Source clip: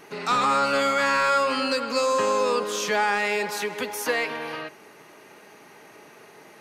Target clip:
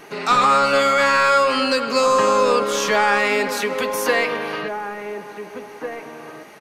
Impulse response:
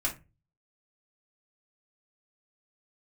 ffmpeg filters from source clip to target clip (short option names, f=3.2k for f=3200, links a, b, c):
-filter_complex "[0:a]asplit=2[a][b];[b]adelay=1749,volume=-7dB,highshelf=f=4k:g=-39.4[c];[a][c]amix=inputs=2:normalize=0,asplit=2[d][e];[1:a]atrim=start_sample=2205,lowpass=5.9k[f];[e][f]afir=irnorm=-1:irlink=0,volume=-15dB[g];[d][g]amix=inputs=2:normalize=0,volume=4.5dB"